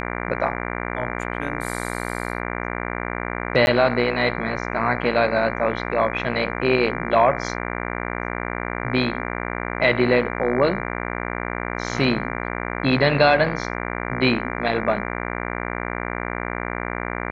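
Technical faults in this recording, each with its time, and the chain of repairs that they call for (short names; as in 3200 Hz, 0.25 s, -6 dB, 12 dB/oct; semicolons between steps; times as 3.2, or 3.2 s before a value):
buzz 60 Hz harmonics 39 -28 dBFS
3.66–3.67 gap 11 ms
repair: de-hum 60 Hz, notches 39; interpolate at 3.66, 11 ms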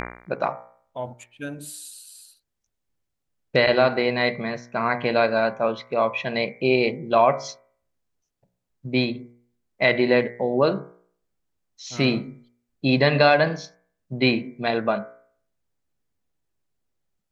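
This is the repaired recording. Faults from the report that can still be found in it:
none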